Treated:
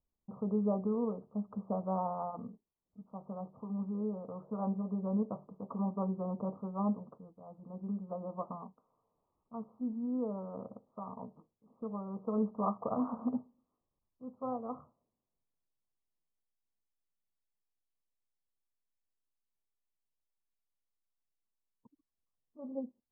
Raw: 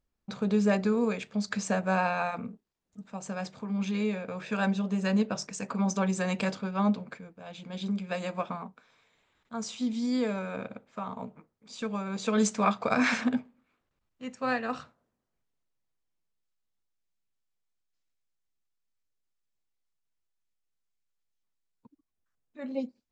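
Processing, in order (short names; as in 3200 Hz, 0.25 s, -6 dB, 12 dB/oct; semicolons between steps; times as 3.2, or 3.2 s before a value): steep low-pass 1200 Hz 96 dB/oct; gain -6.5 dB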